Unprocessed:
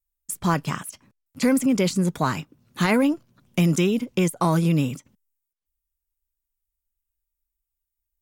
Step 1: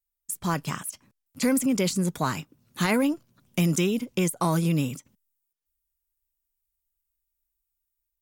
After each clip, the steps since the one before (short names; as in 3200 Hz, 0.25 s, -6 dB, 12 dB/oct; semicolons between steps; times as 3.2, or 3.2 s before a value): AGC gain up to 4.5 dB; high shelf 5400 Hz +7.5 dB; gain -8 dB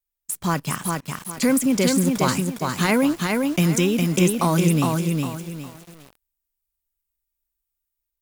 in parallel at -4.5 dB: requantised 6-bit, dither none; on the sum: lo-fi delay 0.408 s, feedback 35%, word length 7-bit, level -3 dB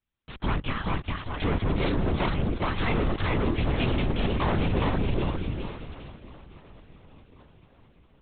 tube stage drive 30 dB, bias 0.55; swung echo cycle 1.074 s, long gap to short 3:1, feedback 42%, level -19.5 dB; LPC vocoder at 8 kHz whisper; gain +7 dB